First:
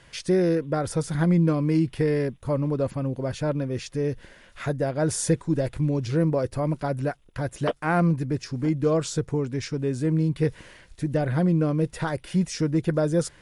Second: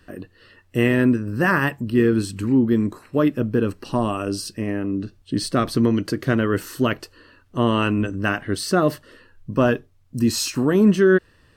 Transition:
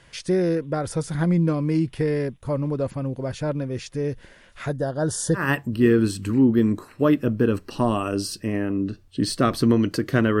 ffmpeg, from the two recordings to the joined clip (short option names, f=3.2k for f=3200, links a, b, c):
-filter_complex "[0:a]asettb=1/sr,asplit=3[a][b][c];[a]atrim=end=4.764[d];[b]atrim=start=4.76:end=5.51,asetpts=PTS-STARTPTS,afade=t=in:d=0.004:c=qsin,afade=t=out:st=0.746:d=0.004:c=qsin,asuperstop=centerf=2300:order=20:qfactor=2.4[e];[c]atrim=start=5.506[f];[d][e]acrossfade=d=0.004:c1=hsin:c2=qsin[g];[g][f]acrossfade=d=0.004:c1=qsin:c2=hsin,apad=whole_dur=10.4,atrim=end=10.4,atrim=end=5.51,asetpts=PTS-STARTPTS[h];[1:a]atrim=start=1.47:end=6.54,asetpts=PTS-STARTPTS[i];[h][i]acrossfade=d=0.18:c1=tri:c2=tri"